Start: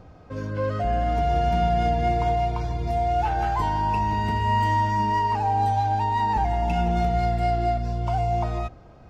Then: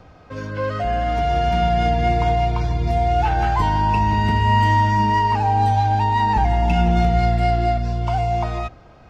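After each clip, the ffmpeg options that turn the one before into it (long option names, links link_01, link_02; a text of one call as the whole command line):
ffmpeg -i in.wav -filter_complex "[0:a]equalizer=frequency=2600:width=0.35:gain=7.5,acrossover=split=330|1300[link_01][link_02][link_03];[link_01]dynaudnorm=framelen=430:gausssize=9:maxgain=7.5dB[link_04];[link_04][link_02][link_03]amix=inputs=3:normalize=0" out.wav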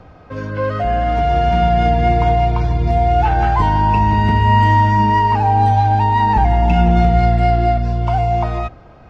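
ffmpeg -i in.wav -af "highshelf=frequency=3700:gain=-10,volume=4.5dB" out.wav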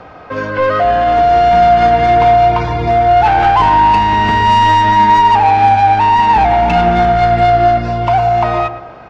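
ffmpeg -i in.wav -filter_complex "[0:a]asplit=2[link_01][link_02];[link_02]highpass=frequency=720:poles=1,volume=20dB,asoftclip=type=tanh:threshold=-1dB[link_03];[link_01][link_03]amix=inputs=2:normalize=0,lowpass=frequency=2800:poles=1,volume=-6dB,asplit=2[link_04][link_05];[link_05]adelay=112,lowpass=frequency=1600:poles=1,volume=-10.5dB,asplit=2[link_06][link_07];[link_07]adelay=112,lowpass=frequency=1600:poles=1,volume=0.42,asplit=2[link_08][link_09];[link_09]adelay=112,lowpass=frequency=1600:poles=1,volume=0.42,asplit=2[link_10][link_11];[link_11]adelay=112,lowpass=frequency=1600:poles=1,volume=0.42[link_12];[link_04][link_06][link_08][link_10][link_12]amix=inputs=5:normalize=0,volume=-1dB" out.wav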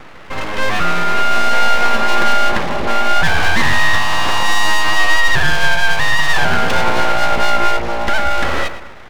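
ffmpeg -i in.wav -af "aeval=exprs='abs(val(0))':channel_layout=same" out.wav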